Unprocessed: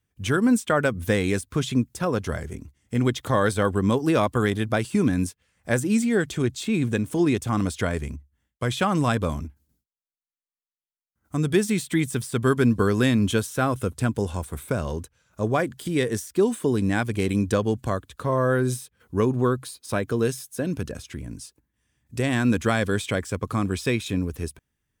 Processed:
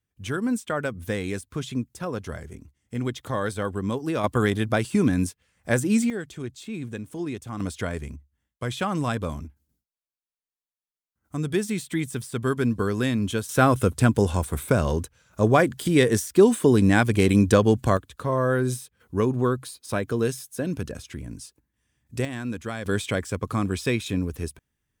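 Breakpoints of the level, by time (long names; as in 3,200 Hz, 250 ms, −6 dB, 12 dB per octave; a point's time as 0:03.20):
−6 dB
from 0:04.24 +0.5 dB
from 0:06.10 −10 dB
from 0:07.60 −4 dB
from 0:13.49 +5 dB
from 0:17.97 −1 dB
from 0:22.25 −10 dB
from 0:22.86 −0.5 dB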